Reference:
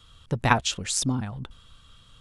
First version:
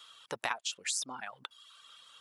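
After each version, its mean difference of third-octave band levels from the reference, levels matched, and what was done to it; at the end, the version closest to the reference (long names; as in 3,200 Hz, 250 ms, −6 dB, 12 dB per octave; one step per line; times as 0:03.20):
9.5 dB: high-pass filter 790 Hz 12 dB per octave
reverb reduction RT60 0.69 s
downward compressor 8 to 1, threshold −35 dBFS, peak gain reduction 19 dB
level +3.5 dB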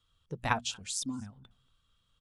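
6.0 dB: mains-hum notches 60/120/180/240 Hz
slap from a distant wall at 40 metres, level −21 dB
noise reduction from a noise print of the clip's start 11 dB
level −8.5 dB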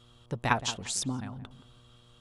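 4.0 dB: low-shelf EQ 140 Hz −5.5 dB
hum with harmonics 120 Hz, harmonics 10, −55 dBFS −7 dB per octave
on a send: feedback echo with a low-pass in the loop 173 ms, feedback 31%, low-pass 1,000 Hz, level −11 dB
on the sum: level −5.5 dB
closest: third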